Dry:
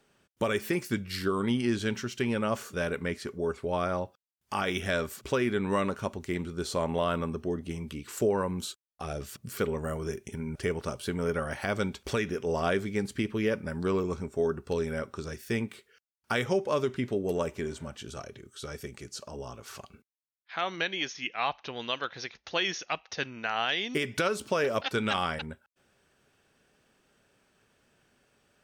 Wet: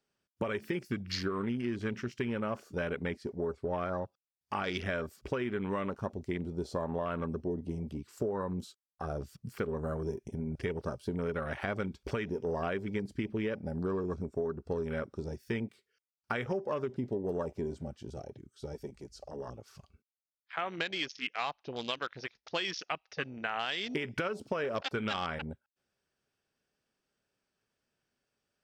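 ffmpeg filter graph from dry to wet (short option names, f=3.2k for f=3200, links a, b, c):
-filter_complex "[0:a]asettb=1/sr,asplit=3[a][b][c];[a]atrim=end=18.744[d];[b]atrim=start=18.74:end=19.49,asetpts=PTS-STARTPTS,afade=t=in:d=0.004:c=qsin,afade=t=out:st=0.746:d=0.004:c=qsin,equalizer=f=67:w=0.99:g=-14,aeval=exprs='val(0)+0.00112*(sin(2*PI*50*n/s)+sin(2*PI*2*50*n/s)/2+sin(2*PI*3*50*n/s)/3+sin(2*PI*4*50*n/s)/4+sin(2*PI*5*50*n/s)/5)':c=same[e];[c]atrim=start=19.486[f];[d][e]acrossfade=d=0.004:c1=hsin:c2=qsin[g];[g][f]acrossfade=d=0.004:c1=qsin:c2=hsin,afwtdn=0.0126,equalizer=f=5k:w=2.9:g=7,acompressor=threshold=-30dB:ratio=6"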